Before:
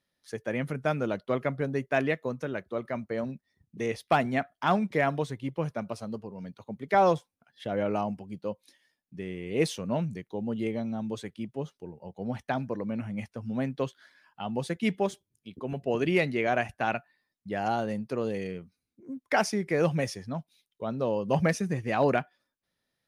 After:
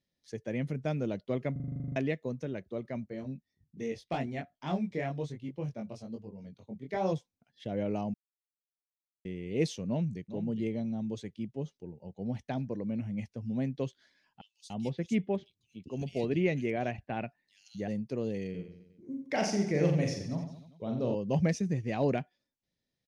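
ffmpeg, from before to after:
ffmpeg -i in.wav -filter_complex "[0:a]asplit=3[link_01][link_02][link_03];[link_01]afade=type=out:start_time=3.07:duration=0.02[link_04];[link_02]flanger=delay=19.5:depth=3.9:speed=1.1,afade=type=in:start_time=3.07:duration=0.02,afade=type=out:start_time=7.11:duration=0.02[link_05];[link_03]afade=type=in:start_time=7.11:duration=0.02[link_06];[link_04][link_05][link_06]amix=inputs=3:normalize=0,asplit=2[link_07][link_08];[link_08]afade=type=in:start_time=9.87:duration=0.01,afade=type=out:start_time=10.31:duration=0.01,aecho=0:1:410|820:0.266073|0.0399109[link_09];[link_07][link_09]amix=inputs=2:normalize=0,asettb=1/sr,asplit=3[link_10][link_11][link_12];[link_10]atrim=end=14.414[link_13];[link_11]atrim=start=14.41:end=17.88,asetpts=PTS-STARTPTS,afade=type=in:duration=0.004:curve=qsin,afade=type=out:start_time=3.466:duration=0.004:curve=qsin,acrossover=split=3500[link_14][link_15];[link_14]adelay=290[link_16];[link_16][link_15]amix=inputs=2:normalize=0,atrim=end_sample=153027[link_17];[link_12]atrim=start=17.876[link_18];[link_13][link_17]acrossfade=duration=0.004:curve1=hsin:curve2=qsin[link_19];[link_19][link_18]acrossfade=duration=0.004:curve1=qsin:curve2=hsin,asettb=1/sr,asplit=3[link_20][link_21][link_22];[link_20]atrim=end=18.504[link_23];[link_21]atrim=start=18.5:end=21.15,asetpts=PTS-STARTPTS,afade=type=in:duration=0.004:curve=qsin,afade=type=out:start_time=2.646:duration=0.004:curve=qsin,aecho=1:1:40|88|145.6|214.7|297.7|397.2:0.631|0.398|0.251|0.158|0.1|0.0631,atrim=end_sample=116865[link_24];[link_22]atrim=start=21.146[link_25];[link_23][link_24]acrossfade=duration=0.004:curve1=hsin:curve2=qsin[link_26];[link_26][link_25]acrossfade=duration=0.004:curve1=qsin:curve2=hsin,asplit=14[link_27][link_28][link_29][link_30][link_31][link_32][link_33][link_34][link_35][link_36][link_37][link_38][link_39][link_40];[link_27]atrim=end=1.562[link_41];[link_28]atrim=start=1.518:end=1.562[link_42];[link_29]atrim=start=1.518:end=1.562[link_43];[link_30]atrim=start=1.518:end=1.562[link_44];[link_31]atrim=start=1.518:end=1.562[link_45];[link_32]atrim=start=1.518:end=1.562[link_46];[link_33]atrim=start=1.518:end=1.562[link_47];[link_34]atrim=start=1.518:end=1.562[link_48];[link_35]atrim=start=1.518:end=1.562[link_49];[link_36]atrim=start=1.518:end=1.562[link_50];[link_37]atrim=start=1.518:end=1.562[link_51];[link_38]atrim=start=1.958:end=8.14,asetpts=PTS-STARTPTS,afade=type=out:start_time=6.178:duration=0.004:curve=hsin[link_52];[link_39]atrim=start=8.14:end=9.25,asetpts=PTS-STARTPTS,volume=0[link_53];[link_40]atrim=start=9.25,asetpts=PTS-STARTPTS,afade=type=in:duration=0.004:curve=hsin[link_54];[link_41][link_42]acrossfade=duration=0.004:curve1=hsin:curve2=hsin[link_55];[link_55][link_43]acrossfade=duration=0.004:curve1=hsin:curve2=hsin[link_56];[link_56][link_44]acrossfade=duration=0.004:curve1=hsin:curve2=hsin[link_57];[link_57][link_45]acrossfade=duration=0.004:curve1=hsin:curve2=hsin[link_58];[link_58][link_46]acrossfade=duration=0.004:curve1=hsin:curve2=hsin[link_59];[link_59][link_47]acrossfade=duration=0.004:curve1=hsin:curve2=hsin[link_60];[link_60][link_48]acrossfade=duration=0.004:curve1=hsin:curve2=hsin[link_61];[link_61][link_49]acrossfade=duration=0.004:curve1=hsin:curve2=hsin[link_62];[link_62][link_50]acrossfade=duration=0.004:curve1=hsin:curve2=hsin[link_63];[link_63][link_51]acrossfade=duration=0.004:curve1=hsin:curve2=hsin[link_64];[link_52][link_53][link_54]concat=n=3:v=0:a=1[link_65];[link_64][link_65]acrossfade=duration=0.004:curve1=hsin:curve2=hsin,firequalizer=gain_entry='entry(140,0);entry(1300,-16);entry(2000,-7);entry(6300,-3);entry(10000,-16)':delay=0.05:min_phase=1" out.wav

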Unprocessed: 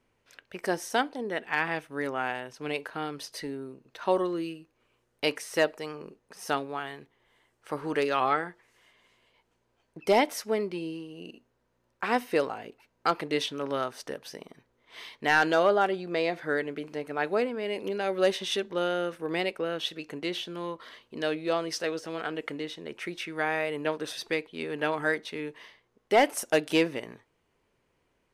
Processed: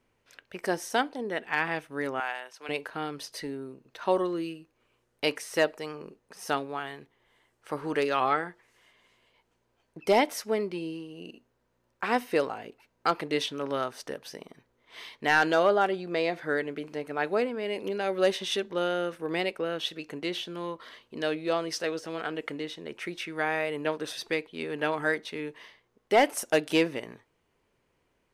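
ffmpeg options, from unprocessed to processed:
ffmpeg -i in.wav -filter_complex "[0:a]asettb=1/sr,asplit=3[link_01][link_02][link_03];[link_01]atrim=end=2.204[link_04];[link_02]atrim=start=2.2:end=2.69,asetpts=PTS-STARTPTS,afade=type=in:duration=0.004:curve=qsin,afade=type=out:start_time=0.486:duration=0.004:curve=qsin,highpass=700[link_05];[link_03]atrim=start=2.686[link_06];[link_04][link_05]acrossfade=duration=0.004:curve1=hsin:curve2=qsin[link_07];[link_07][link_06]acrossfade=duration=0.004:curve1=qsin:curve2=hsin" out.wav

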